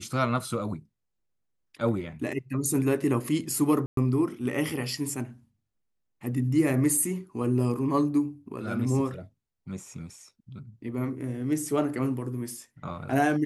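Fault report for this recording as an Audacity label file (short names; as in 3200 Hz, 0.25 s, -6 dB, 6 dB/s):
3.860000	3.970000	gap 0.113 s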